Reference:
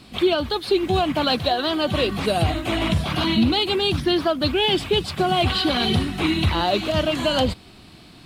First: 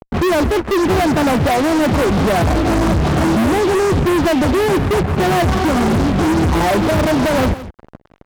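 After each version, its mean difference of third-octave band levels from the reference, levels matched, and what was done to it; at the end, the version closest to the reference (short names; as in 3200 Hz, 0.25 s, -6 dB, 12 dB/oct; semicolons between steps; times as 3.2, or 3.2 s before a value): 6.5 dB: steep low-pass 1500 Hz 36 dB/oct; tilt shelf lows +6.5 dB, about 910 Hz; fuzz box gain 33 dB, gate -35 dBFS; on a send: echo 0.167 s -14.5 dB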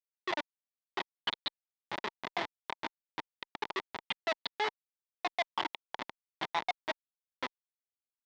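20.5 dB: random spectral dropouts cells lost 81%; vocal rider within 4 dB 2 s; Schmitt trigger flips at -21 dBFS; speaker cabinet 480–4900 Hz, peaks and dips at 500 Hz -6 dB, 920 Hz +8 dB, 2000 Hz +7 dB, 3500 Hz +6 dB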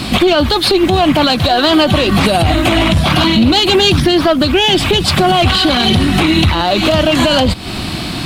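4.0 dB: one diode to ground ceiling -14.5 dBFS; bell 440 Hz -6 dB 0.27 oct; compressor 10:1, threshold -32 dBFS, peak gain reduction 15.5 dB; maximiser +27 dB; gain -1 dB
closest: third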